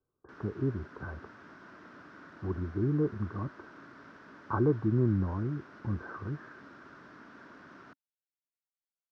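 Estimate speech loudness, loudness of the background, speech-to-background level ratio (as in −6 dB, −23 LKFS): −33.0 LKFS, −52.0 LKFS, 19.0 dB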